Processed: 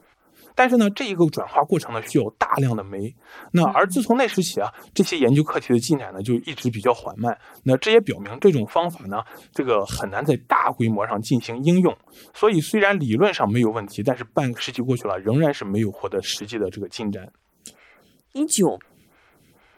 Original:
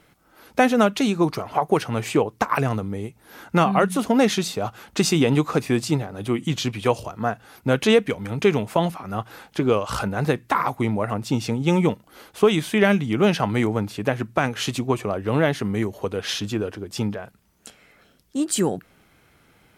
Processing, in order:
phaser with staggered stages 2.2 Hz
level +4 dB

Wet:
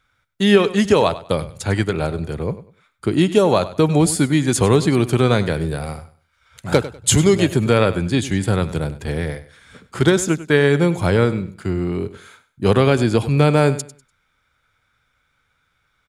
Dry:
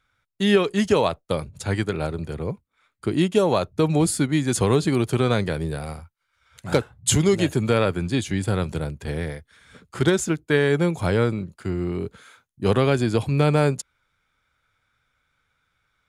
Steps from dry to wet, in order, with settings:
repeating echo 98 ms, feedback 25%, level −15.5 dB
level +4.5 dB

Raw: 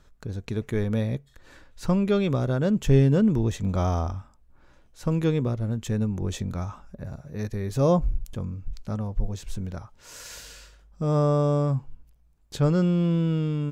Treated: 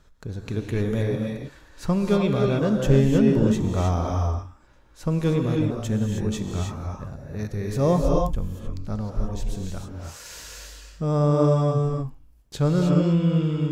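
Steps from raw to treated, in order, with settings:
reverb whose tail is shaped and stops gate 340 ms rising, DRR 0.5 dB

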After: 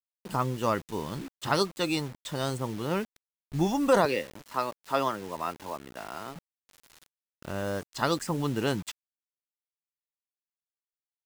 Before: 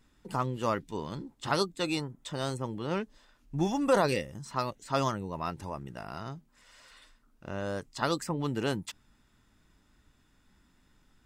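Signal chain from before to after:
0:04.05–0:06.36: three-way crossover with the lows and the highs turned down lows −15 dB, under 240 Hz, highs −23 dB, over 4,800 Hz
bit reduction 8 bits
level +2.5 dB

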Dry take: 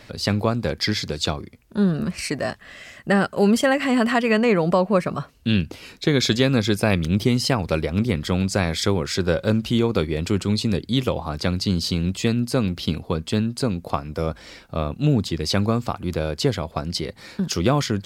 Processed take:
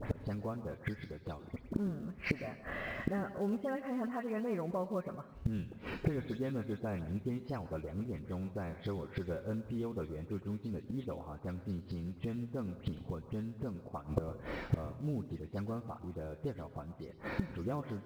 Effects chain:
every frequency bin delayed by itself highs late, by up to 137 ms
low-pass filter 1,300 Hz 12 dB per octave
in parallel at −8.5 dB: floating-point word with a short mantissa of 2 bits
on the sum: gate with flip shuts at −23 dBFS, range −25 dB
dense smooth reverb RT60 0.72 s, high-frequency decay 1×, pre-delay 90 ms, DRR 12 dB
level +4.5 dB

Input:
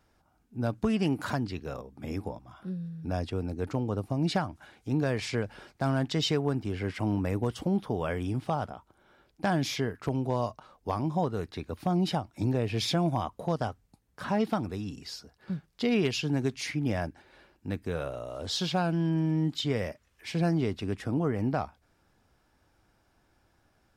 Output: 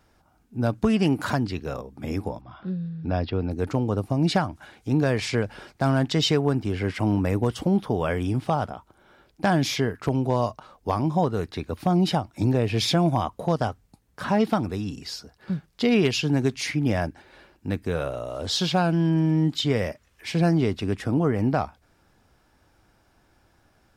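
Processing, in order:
0:02.41–0:03.51: Butterworth low-pass 4,900 Hz 48 dB per octave
level +6 dB

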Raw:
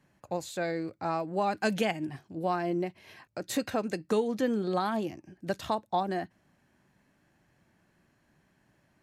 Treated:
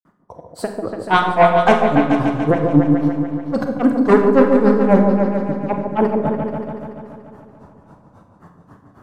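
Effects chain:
spectral magnitudes quantised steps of 15 dB
high shelf with overshoot 1,600 Hz −10.5 dB, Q 3
in parallel at +0.5 dB: brickwall limiter −25.5 dBFS, peak gain reduction 11 dB
on the sum: automatic gain control gain up to 11 dB
sine wavefolder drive 6 dB, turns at −2.5 dBFS
granular cloud 145 ms, grains 3.7 per second, spray 74 ms, pitch spread up and down by 3 semitones
on a send: echo whose low-pass opens from repeat to repeat 144 ms, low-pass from 750 Hz, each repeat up 2 octaves, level −3 dB
on the sum: four-comb reverb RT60 0.66 s, combs from 31 ms, DRR 6 dB
level −3 dB

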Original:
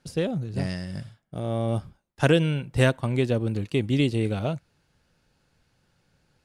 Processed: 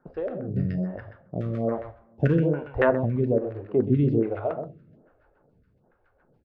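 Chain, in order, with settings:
in parallel at +1 dB: downward compressor 4 to 1, threshold −33 dBFS, peak gain reduction 15.5 dB
0:01.36–0:02.35: on the sum: log-companded quantiser 4 bits
auto-filter low-pass saw down 7.1 Hz 490–1,600 Hz
rotating-speaker cabinet horn 0.65 Hz, later 6.3 Hz, at 0:03.46
single-tap delay 127 ms −9 dB
on a send at −10 dB: convolution reverb, pre-delay 3 ms
on the sum: phaser with staggered stages 1.2 Hz

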